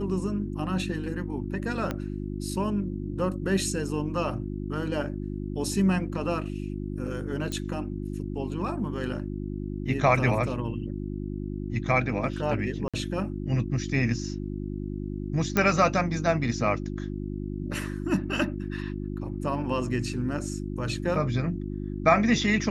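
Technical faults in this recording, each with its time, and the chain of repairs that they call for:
hum 50 Hz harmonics 7 -33 dBFS
1.91 s: pop -16 dBFS
7.52 s: pop -20 dBFS
12.88–12.94 s: dropout 56 ms
15.57 s: pop -9 dBFS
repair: de-click; de-hum 50 Hz, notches 7; interpolate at 12.88 s, 56 ms

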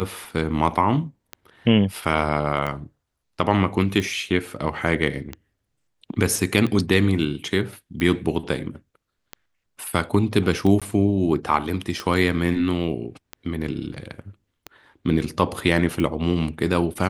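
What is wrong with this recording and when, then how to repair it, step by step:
tick 45 rpm -15 dBFS
10.80–10.82 s: dropout 16 ms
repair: de-click; interpolate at 10.80 s, 16 ms

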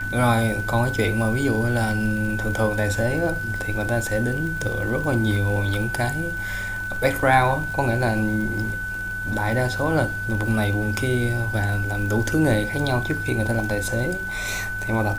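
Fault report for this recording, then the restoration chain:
crackle 50 per s -29 dBFS
whine 1.5 kHz -27 dBFS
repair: de-click; band-stop 1.5 kHz, Q 30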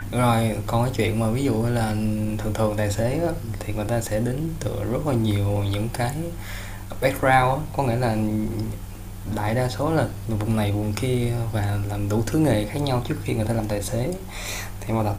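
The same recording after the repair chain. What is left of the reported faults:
nothing left

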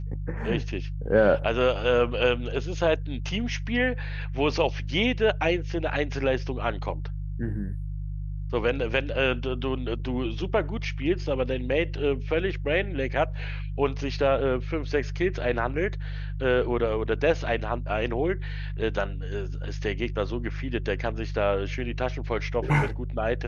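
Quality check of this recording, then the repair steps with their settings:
hum 50 Hz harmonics 3 -32 dBFS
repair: de-hum 50 Hz, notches 3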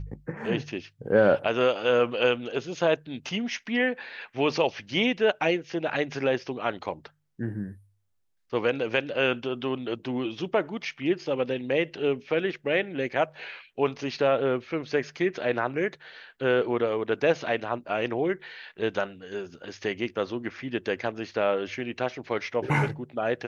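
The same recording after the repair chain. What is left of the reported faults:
nothing left

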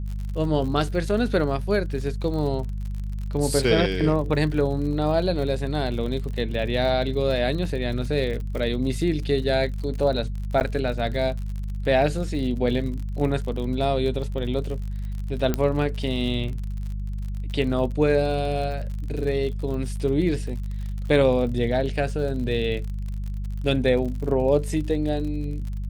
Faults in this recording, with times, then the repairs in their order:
crackle 54 per s -32 dBFS
hum 50 Hz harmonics 4 -29 dBFS
10.60–10.61 s: dropout 9.5 ms
15.54 s: pop -10 dBFS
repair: de-click; de-hum 50 Hz, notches 4; interpolate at 10.60 s, 9.5 ms

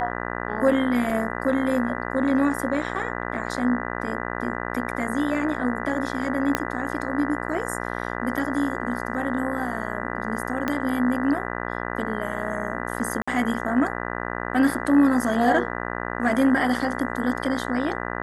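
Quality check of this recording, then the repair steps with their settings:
buzz 60 Hz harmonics 33 -30 dBFS
1.10 s: dropout 3.1 ms
6.55 s: pop -6 dBFS
10.68 s: pop -11 dBFS
13.22–13.28 s: dropout 55 ms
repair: de-click; de-hum 60 Hz, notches 33; interpolate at 1.10 s, 3.1 ms; interpolate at 13.22 s, 55 ms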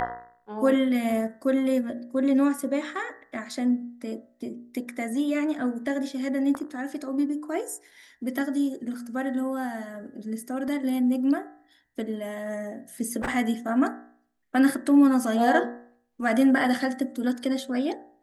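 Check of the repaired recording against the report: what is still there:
6.55 s: pop
10.68 s: pop

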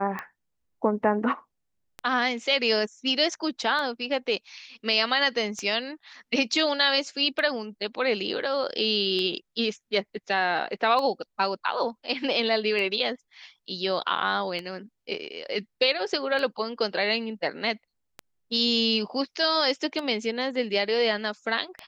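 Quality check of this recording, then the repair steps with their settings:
tick 33 1/3 rpm -19 dBFS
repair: de-click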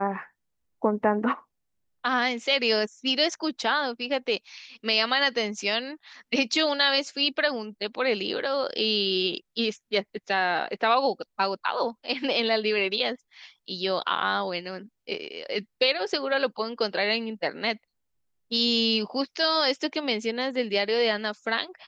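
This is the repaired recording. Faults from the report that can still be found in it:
nothing left

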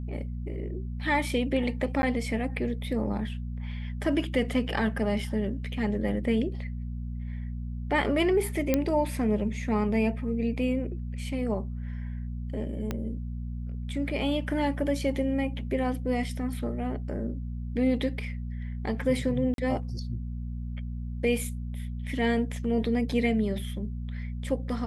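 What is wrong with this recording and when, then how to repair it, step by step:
hum 60 Hz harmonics 4 -34 dBFS
2.02–2.03 s: dropout 10 ms
8.74 s: pop -10 dBFS
12.91 s: pop -17 dBFS
19.54–19.58 s: dropout 42 ms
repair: de-click; de-hum 60 Hz, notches 4; interpolate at 2.02 s, 10 ms; interpolate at 19.54 s, 42 ms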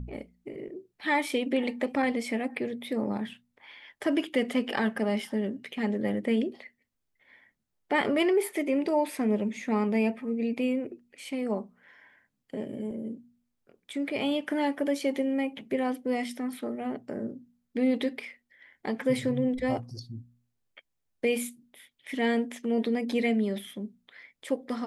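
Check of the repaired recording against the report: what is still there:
12.91 s: pop

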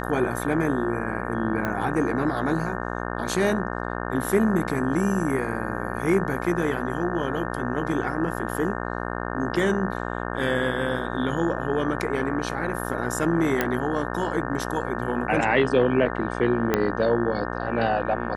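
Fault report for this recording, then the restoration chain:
buzz 60 Hz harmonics 30 -30 dBFS
1.65 s: pop -14 dBFS
13.61 s: pop -8 dBFS
16.74 s: pop -7 dBFS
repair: de-click; de-hum 60 Hz, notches 30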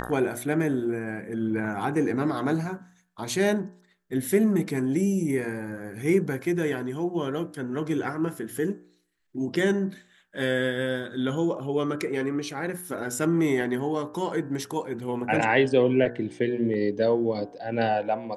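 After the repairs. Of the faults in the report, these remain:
16.74 s: pop

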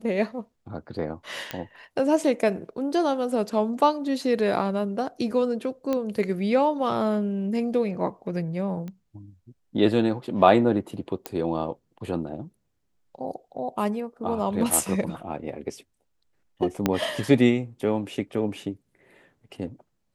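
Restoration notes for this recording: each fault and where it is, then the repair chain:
1.51 s: pop -14 dBFS
5.93 s: pop -14 dBFS
8.88 s: pop -25 dBFS
11.26 s: pop -14 dBFS
16.86 s: pop -7 dBFS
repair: de-click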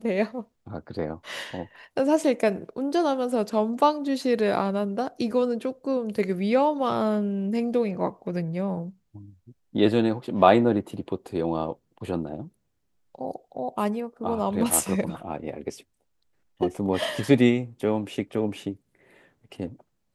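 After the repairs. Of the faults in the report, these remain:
16.86 s: pop

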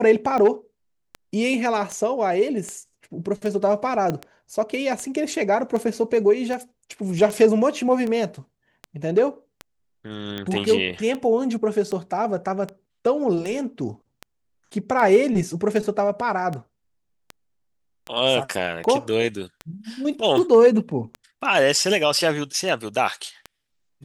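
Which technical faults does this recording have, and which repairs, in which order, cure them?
tick 78 rpm -17 dBFS
4.10 s: pop -12 dBFS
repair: de-click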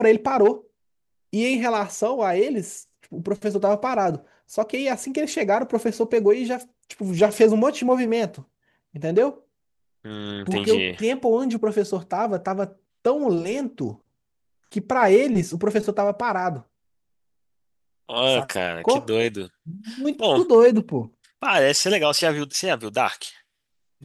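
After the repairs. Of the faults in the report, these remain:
4.10 s: pop

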